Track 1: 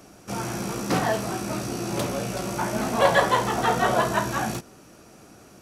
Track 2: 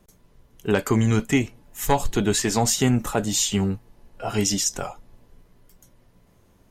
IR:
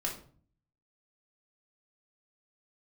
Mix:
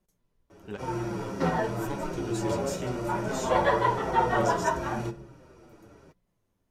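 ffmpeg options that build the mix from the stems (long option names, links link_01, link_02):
-filter_complex "[0:a]lowpass=frequency=1300:poles=1,aecho=1:1:2.1:0.38,asplit=2[link_01][link_02];[link_02]adelay=6.7,afreqshift=-1.5[link_03];[link_01][link_03]amix=inputs=2:normalize=1,adelay=500,volume=2dB,asplit=2[link_04][link_05];[link_05]volume=-8.5dB[link_06];[1:a]volume=-14dB,asplit=3[link_07][link_08][link_09];[link_07]atrim=end=0.77,asetpts=PTS-STARTPTS,afade=type=out:start_time=0.766:duration=0.004:curve=hsin[link_10];[link_08]atrim=start=0.77:end=1.75,asetpts=PTS-STARTPTS,volume=0[link_11];[link_09]atrim=start=1.75,asetpts=PTS-STARTPTS,afade=type=in:duration=0.004:curve=hsin[link_12];[link_10][link_11][link_12]concat=n=3:v=0:a=1[link_13];[2:a]atrim=start_sample=2205[link_14];[link_06][link_14]afir=irnorm=-1:irlink=0[link_15];[link_04][link_13][link_15]amix=inputs=3:normalize=0,flanger=delay=5.4:depth=6.9:regen=-42:speed=0.96:shape=sinusoidal"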